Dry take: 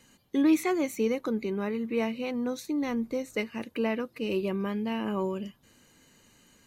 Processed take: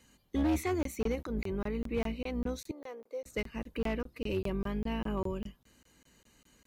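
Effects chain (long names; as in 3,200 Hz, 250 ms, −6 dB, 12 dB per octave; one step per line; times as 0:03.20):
sub-octave generator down 2 octaves, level −2 dB
0:01.15–0:01.59: transient designer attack −9 dB, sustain +8 dB
hard clipping −20.5 dBFS, distortion −14 dB
0:02.71–0:03.26: four-pole ladder high-pass 420 Hz, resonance 50%
regular buffer underruns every 0.20 s, samples 1,024, zero, from 0:00.83
level −4.5 dB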